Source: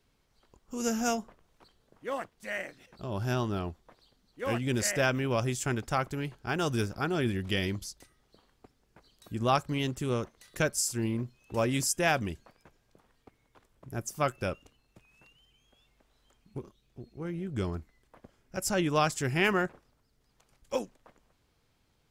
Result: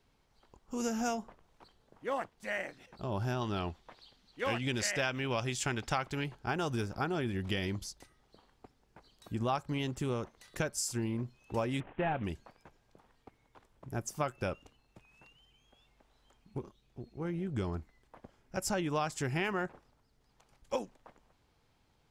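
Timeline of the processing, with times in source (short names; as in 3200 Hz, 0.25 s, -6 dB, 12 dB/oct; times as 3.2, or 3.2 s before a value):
3.41–6.24 bell 3300 Hz +9 dB 2.1 oct
11.8–12.24 CVSD 16 kbps
whole clip: high shelf 9300 Hz -8 dB; compressor 6:1, threshold -30 dBFS; bell 850 Hz +4.5 dB 0.5 oct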